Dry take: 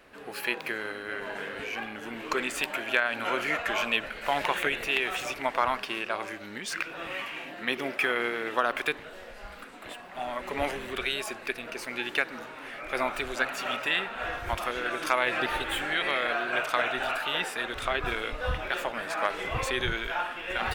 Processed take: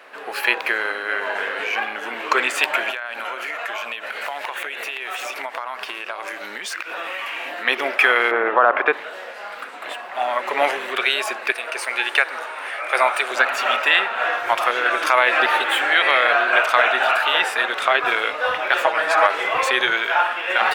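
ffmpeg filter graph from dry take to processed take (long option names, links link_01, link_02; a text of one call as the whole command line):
ffmpeg -i in.wav -filter_complex "[0:a]asettb=1/sr,asplit=3[link_01][link_02][link_03];[link_01]atrim=end=2.904[link_04];[link_02]atrim=start=2.9:end=7.65,asetpts=PTS-STARTPTS,afade=type=in:duration=0.004:curve=qsin,afade=type=out:start_time=4.746:duration=0.004:curve=qsin,acompressor=threshold=-36dB:ratio=12:attack=3.2:release=140:knee=1:detection=peak,highshelf=frequency=7500:gain=8[link_05];[link_03]atrim=start=7.646[link_06];[link_04][link_05]acrossfade=duration=0.004:curve1=hsin:curve2=qsin[link_07];[link_07][link_06]acrossfade=duration=0.004:curve1=qsin:curve2=hsin,asettb=1/sr,asplit=3[link_08][link_09][link_10];[link_08]atrim=end=8.314[link_11];[link_09]atrim=start=8.31:end=8.93,asetpts=PTS-STARTPTS,afade=type=in:duration=0.004:curve=qsin,afade=type=out:start_time=0.616:duration=0.004:curve=qsin,lowpass=1300,acontrast=43[link_12];[link_10]atrim=start=8.926[link_13];[link_11][link_12]acrossfade=duration=0.004:curve1=hsin:curve2=qsin[link_14];[link_14][link_13]acrossfade=duration=0.004:curve1=qsin:curve2=hsin,asettb=1/sr,asplit=3[link_15][link_16][link_17];[link_15]atrim=end=11.524[link_18];[link_16]atrim=start=11.52:end=13.31,asetpts=PTS-STARTPTS,afade=type=in:duration=0.004:curve=qsin,afade=type=out:start_time=1.786:duration=0.004:curve=qsin,highpass=410,equalizer=frequency=9000:width=6.6:gain=13[link_19];[link_17]atrim=start=13.306[link_20];[link_18][link_19]acrossfade=duration=0.004:curve1=hsin:curve2=qsin[link_21];[link_21][link_20]acrossfade=duration=0.004:curve1=qsin:curve2=hsin,asettb=1/sr,asplit=3[link_22][link_23][link_24];[link_22]atrim=end=18.834[link_25];[link_23]atrim=start=18.83:end=19.27,asetpts=PTS-STARTPTS,afade=type=in:duration=0.004:curve=qsin,afade=type=out:start_time=0.436:duration=0.004:curve=qsin,equalizer=frequency=14000:width=2.9:gain=-13,aecho=1:1:6.3:0.8,atrim=end_sample=19404[link_26];[link_24]atrim=start=19.266[link_27];[link_25][link_26]acrossfade=duration=0.004:curve1=hsin:curve2=qsin[link_28];[link_28][link_27]acrossfade=duration=0.004:curve1=qsin:curve2=hsin,highpass=630,highshelf=frequency=3500:gain=-9.5,alimiter=level_in=15.5dB:limit=-1dB:release=50:level=0:latency=1,volume=-1dB" out.wav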